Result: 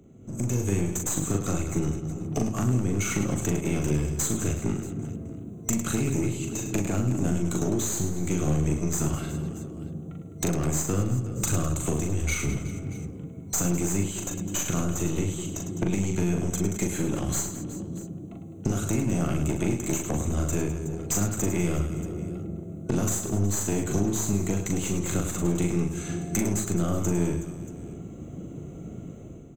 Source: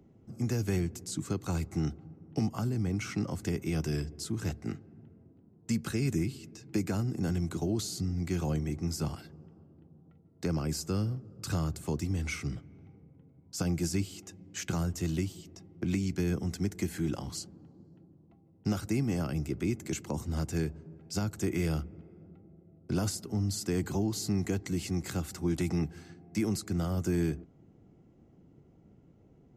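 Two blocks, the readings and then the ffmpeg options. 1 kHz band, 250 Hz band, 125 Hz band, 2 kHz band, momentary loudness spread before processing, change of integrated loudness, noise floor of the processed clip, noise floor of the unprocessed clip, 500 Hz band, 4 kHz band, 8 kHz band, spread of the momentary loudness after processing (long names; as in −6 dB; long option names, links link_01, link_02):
+7.0 dB, +5.5 dB, +5.5 dB, +5.5 dB, 9 LU, +5.5 dB, −41 dBFS, −60 dBFS, +6.5 dB, +1.5 dB, +12.5 dB, 11 LU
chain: -af "superequalizer=9b=0.447:11b=0.562:14b=0.282:15b=3.16,acompressor=threshold=-42dB:ratio=6,aeval=exprs='clip(val(0),-1,0.00447)':channel_layout=same,dynaudnorm=framelen=130:gausssize=7:maxgain=13dB,aecho=1:1:40|104|206.4|370.2|632.4:0.631|0.398|0.251|0.158|0.1,adynamicequalizer=threshold=0.00398:dfrequency=4200:dqfactor=0.7:tfrequency=4200:tqfactor=0.7:attack=5:release=100:ratio=0.375:range=3.5:mode=cutabove:tftype=highshelf,volume=5dB"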